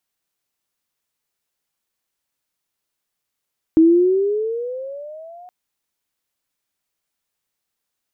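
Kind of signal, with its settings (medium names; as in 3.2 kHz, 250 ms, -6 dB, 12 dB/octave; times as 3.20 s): gliding synth tone sine, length 1.72 s, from 317 Hz, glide +14.5 st, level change -31 dB, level -7 dB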